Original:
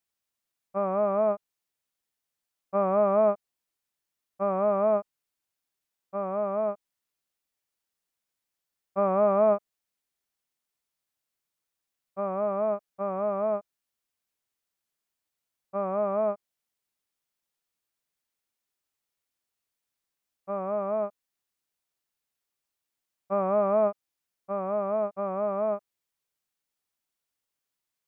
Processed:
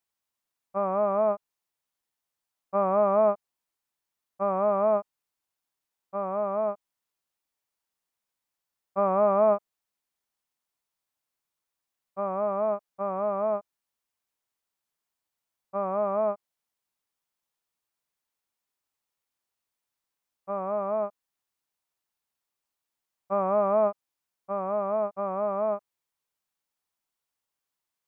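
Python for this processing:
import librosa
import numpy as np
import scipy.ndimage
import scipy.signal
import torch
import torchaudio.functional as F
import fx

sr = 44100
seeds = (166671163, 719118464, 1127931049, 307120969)

y = fx.peak_eq(x, sr, hz=950.0, db=5.0, octaves=0.85)
y = y * librosa.db_to_amplitude(-1.5)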